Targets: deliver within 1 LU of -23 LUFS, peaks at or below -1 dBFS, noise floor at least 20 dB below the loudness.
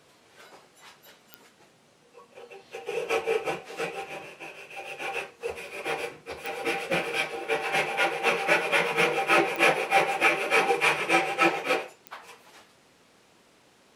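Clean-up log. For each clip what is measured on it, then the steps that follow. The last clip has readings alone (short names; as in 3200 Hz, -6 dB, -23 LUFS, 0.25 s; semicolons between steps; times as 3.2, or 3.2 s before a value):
clicks 4; loudness -25.5 LUFS; peak -7.5 dBFS; loudness target -23.0 LUFS
-> de-click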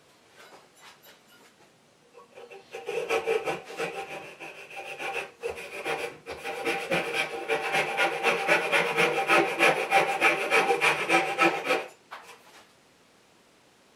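clicks 0; loudness -25.5 LUFS; peak -7.5 dBFS; loudness target -23.0 LUFS
-> gain +2.5 dB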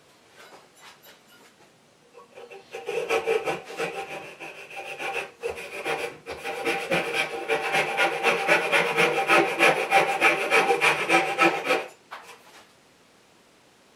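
loudness -23.0 LUFS; peak -5.0 dBFS; noise floor -58 dBFS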